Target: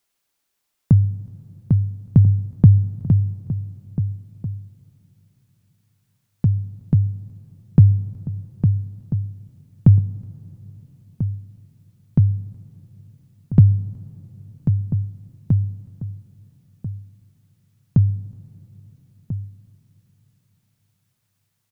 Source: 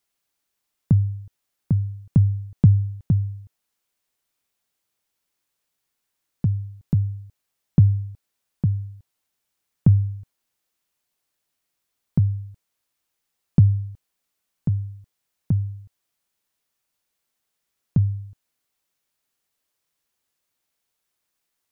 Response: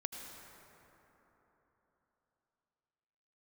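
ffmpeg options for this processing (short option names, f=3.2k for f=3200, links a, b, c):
-filter_complex "[0:a]asplit=2[a][b];[b]adelay=1341,volume=-12dB,highshelf=f=4k:g=-30.2[c];[a][c]amix=inputs=2:normalize=0,asplit=2[d][e];[1:a]atrim=start_sample=2205,asetrate=38367,aresample=44100,adelay=8[f];[e][f]afir=irnorm=-1:irlink=0,volume=-17dB[g];[d][g]amix=inputs=2:normalize=0,volume=3.5dB"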